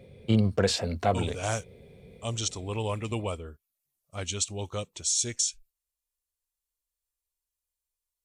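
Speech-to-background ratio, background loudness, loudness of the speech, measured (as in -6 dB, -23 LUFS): -4.0 dB, -27.0 LUFS, -31.0 LUFS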